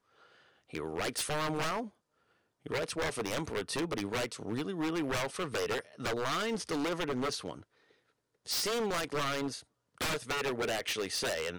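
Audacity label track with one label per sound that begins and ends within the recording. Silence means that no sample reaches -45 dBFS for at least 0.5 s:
0.730000	1.880000	sound
2.660000	7.630000	sound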